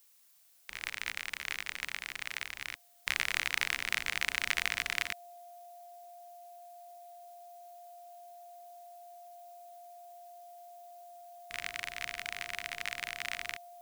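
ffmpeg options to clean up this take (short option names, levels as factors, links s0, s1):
-af "bandreject=f=700:w=30,afftdn=nr=28:nf=-55"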